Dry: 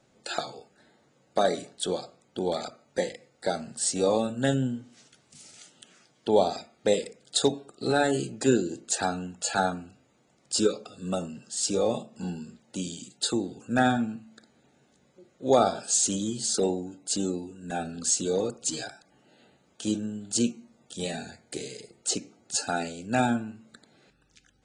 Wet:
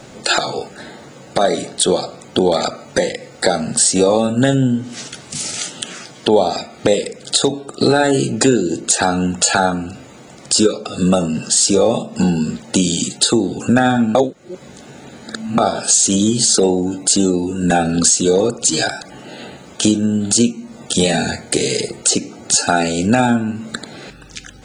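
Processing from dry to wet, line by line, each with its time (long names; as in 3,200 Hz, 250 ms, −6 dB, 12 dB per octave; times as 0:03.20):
0:14.15–0:15.58: reverse
whole clip: downward compressor 4 to 1, threshold −39 dBFS; boost into a limiter +27 dB; level −1 dB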